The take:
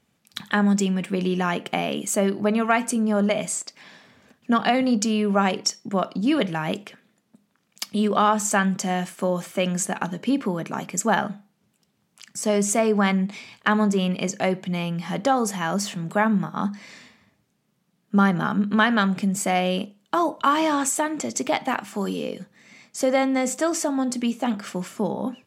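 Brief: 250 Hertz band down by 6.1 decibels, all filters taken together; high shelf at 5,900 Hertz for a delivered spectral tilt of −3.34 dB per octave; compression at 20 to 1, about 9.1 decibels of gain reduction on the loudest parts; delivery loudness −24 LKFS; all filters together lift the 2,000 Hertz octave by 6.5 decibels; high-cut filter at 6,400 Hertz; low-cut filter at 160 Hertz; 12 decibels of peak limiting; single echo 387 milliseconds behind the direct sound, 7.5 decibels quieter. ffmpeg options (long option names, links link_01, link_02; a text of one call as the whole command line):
ffmpeg -i in.wav -af "highpass=160,lowpass=6400,equalizer=frequency=250:width_type=o:gain=-6.5,equalizer=frequency=2000:width_type=o:gain=8,highshelf=frequency=5900:gain=3.5,acompressor=threshold=-20dB:ratio=20,alimiter=limit=-16.5dB:level=0:latency=1,aecho=1:1:387:0.422,volume=4.5dB" out.wav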